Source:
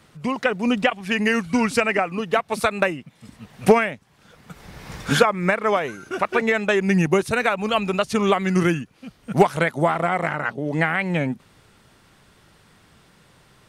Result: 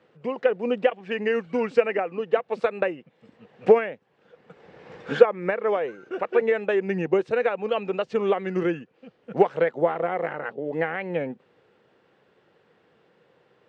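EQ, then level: distance through air 240 m; cabinet simulation 160–9700 Hz, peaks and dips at 360 Hz +5 dB, 790 Hz +4 dB, 1.7 kHz +4 dB, 2.8 kHz +4 dB, 7.7 kHz +9 dB; peaking EQ 490 Hz +14 dB 0.45 oct; -9.5 dB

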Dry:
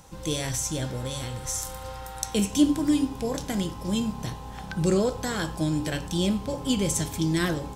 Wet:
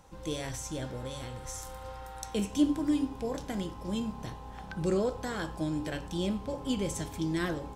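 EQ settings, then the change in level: peaking EQ 140 Hz -5 dB 1.3 oct; treble shelf 3.2 kHz -9 dB; -4.0 dB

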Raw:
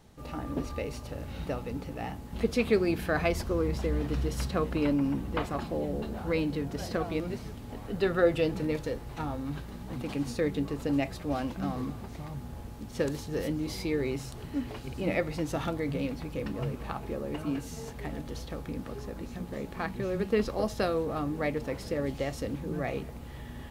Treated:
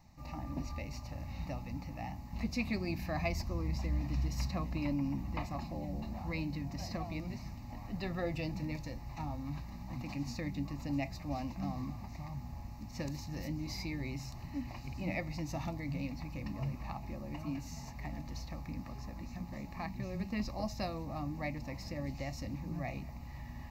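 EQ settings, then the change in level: dynamic bell 1.3 kHz, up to -5 dB, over -43 dBFS, Q 0.89; static phaser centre 2.2 kHz, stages 8; -2.0 dB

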